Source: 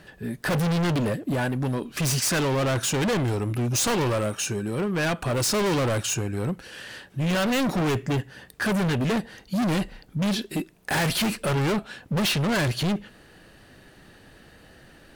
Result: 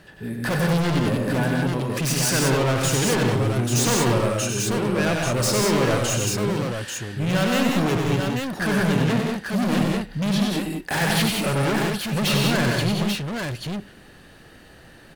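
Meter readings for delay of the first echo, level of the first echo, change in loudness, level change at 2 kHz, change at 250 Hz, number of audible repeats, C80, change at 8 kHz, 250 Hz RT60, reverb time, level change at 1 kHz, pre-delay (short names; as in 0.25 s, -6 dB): 95 ms, -4.5 dB, +3.0 dB, +3.5 dB, +3.5 dB, 3, none, +3.5 dB, none, none, +3.5 dB, none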